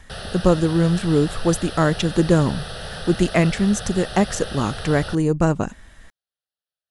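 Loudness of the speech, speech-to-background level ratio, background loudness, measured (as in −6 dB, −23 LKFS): −20.5 LKFS, 12.5 dB, −33.0 LKFS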